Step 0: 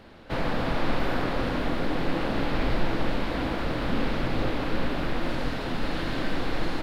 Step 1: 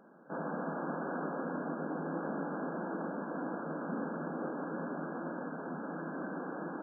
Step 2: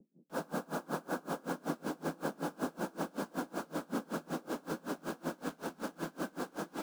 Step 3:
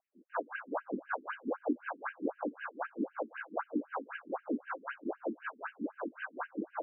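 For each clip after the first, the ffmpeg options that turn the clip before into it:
ffmpeg -i in.wav -af "afftfilt=real='re*between(b*sr/4096,150,1700)':imag='im*between(b*sr/4096,150,1700)':win_size=4096:overlap=0.75,volume=-8dB" out.wav
ffmpeg -i in.wav -filter_complex "[0:a]acrossover=split=130|350[link_01][link_02][link_03];[link_03]acrusher=bits=7:mix=0:aa=0.000001[link_04];[link_01][link_02][link_04]amix=inputs=3:normalize=0,aeval=exprs='val(0)*pow(10,-29*(0.5-0.5*cos(2*PI*5.3*n/s))/20)':channel_layout=same,volume=5dB" out.wav
ffmpeg -i in.wav -af "equalizer=frequency=370:width_type=o:width=0.34:gain=-4.5,afftfilt=real='re*between(b*sr/1024,280*pow(2200/280,0.5+0.5*sin(2*PI*3.9*pts/sr))/1.41,280*pow(2200/280,0.5+0.5*sin(2*PI*3.9*pts/sr))*1.41)':imag='im*between(b*sr/1024,280*pow(2200/280,0.5+0.5*sin(2*PI*3.9*pts/sr))/1.41,280*pow(2200/280,0.5+0.5*sin(2*PI*3.9*pts/sr))*1.41)':win_size=1024:overlap=0.75,volume=8.5dB" out.wav

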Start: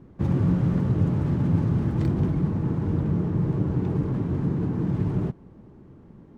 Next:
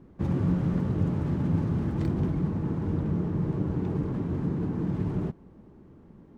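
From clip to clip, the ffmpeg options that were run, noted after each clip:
ffmpeg -i in.wav -af "equalizer=frequency=120:width_type=o:width=0.36:gain=-6,volume=-2.5dB" out.wav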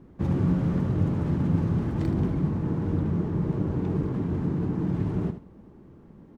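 ffmpeg -i in.wav -af "aecho=1:1:77|154:0.299|0.0537,volume=1.5dB" out.wav

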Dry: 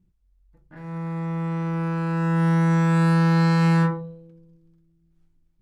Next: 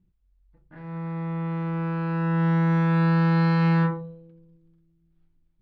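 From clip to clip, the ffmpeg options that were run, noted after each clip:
ffmpeg -i in.wav -af "lowpass=frequency=4100:width=0.5412,lowpass=frequency=4100:width=1.3066,volume=-2dB" out.wav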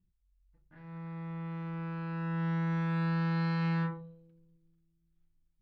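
ffmpeg -i in.wav -af "equalizer=frequency=440:width=0.37:gain=-6.5,volume=-6.5dB" out.wav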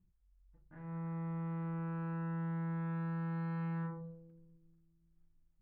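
ffmpeg -i in.wav -af "lowpass=1500,acompressor=threshold=-39dB:ratio=6,volume=2.5dB" out.wav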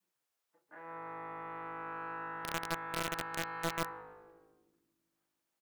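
ffmpeg -i in.wav -filter_complex "[0:a]adynamicequalizer=threshold=0.00126:dfrequency=460:dqfactor=0.87:tfrequency=460:tqfactor=0.87:attack=5:release=100:ratio=0.375:range=3:mode=cutabove:tftype=bell,acrossover=split=380[link_01][link_02];[link_01]acrusher=bits=5:mix=0:aa=0.000001[link_03];[link_02]asplit=6[link_04][link_05][link_06][link_07][link_08][link_09];[link_05]adelay=142,afreqshift=-51,volume=-10dB[link_10];[link_06]adelay=284,afreqshift=-102,volume=-16.7dB[link_11];[link_07]adelay=426,afreqshift=-153,volume=-23.5dB[link_12];[link_08]adelay=568,afreqshift=-204,volume=-30.2dB[link_13];[link_09]adelay=710,afreqshift=-255,volume=-37dB[link_14];[link_04][link_10][link_11][link_12][link_13][link_14]amix=inputs=6:normalize=0[link_15];[link_03][link_15]amix=inputs=2:normalize=0,volume=9dB" out.wav

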